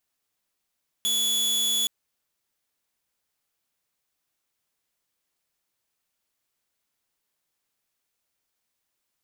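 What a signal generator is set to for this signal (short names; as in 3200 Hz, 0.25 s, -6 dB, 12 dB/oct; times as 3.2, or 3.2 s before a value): tone saw 3410 Hz -19.5 dBFS 0.82 s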